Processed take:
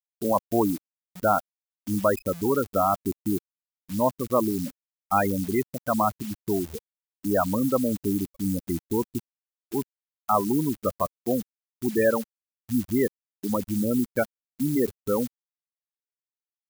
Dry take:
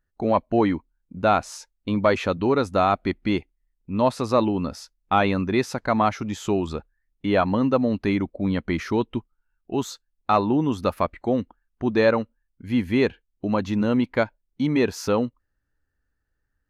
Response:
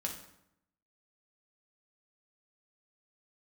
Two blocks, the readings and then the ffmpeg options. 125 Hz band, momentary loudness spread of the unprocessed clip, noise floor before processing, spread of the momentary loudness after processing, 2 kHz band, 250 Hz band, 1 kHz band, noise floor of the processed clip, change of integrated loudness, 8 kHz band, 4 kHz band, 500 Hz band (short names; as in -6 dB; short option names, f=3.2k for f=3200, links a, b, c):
-4.5 dB, 11 LU, -76 dBFS, 10 LU, -6.0 dB, -3.0 dB, -3.0 dB, under -85 dBFS, -3.0 dB, +3.0 dB, -11.0 dB, -3.0 dB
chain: -af "afftfilt=real='re*gte(hypot(re,im),0.2)':imag='im*gte(hypot(re,im),0.2)':win_size=1024:overlap=0.75,acrusher=bits=8:dc=4:mix=0:aa=0.000001,aemphasis=mode=production:type=75kf,volume=-3dB"